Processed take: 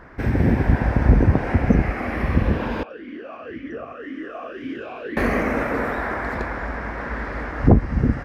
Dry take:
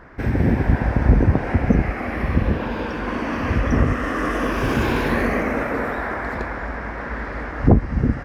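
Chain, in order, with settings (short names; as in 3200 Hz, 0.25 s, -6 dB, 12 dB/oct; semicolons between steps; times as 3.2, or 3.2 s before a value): 2.83–5.17 vowel sweep a-i 1.9 Hz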